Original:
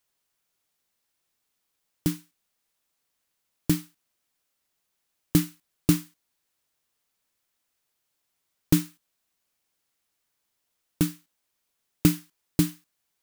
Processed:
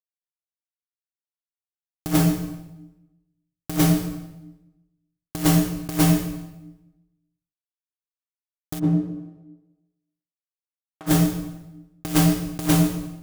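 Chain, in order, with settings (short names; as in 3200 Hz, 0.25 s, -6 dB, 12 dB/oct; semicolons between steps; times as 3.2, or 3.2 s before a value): Wiener smoothing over 15 samples; fuzz box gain 36 dB, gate -40 dBFS; on a send at -7 dB: reverb RT60 1.0 s, pre-delay 19 ms; on the sum: negative-ratio compressor -23 dBFS, ratio -0.5; 8.78–11.06 band-pass 210 Hz -> 1100 Hz, Q 1.2; gain +5.5 dB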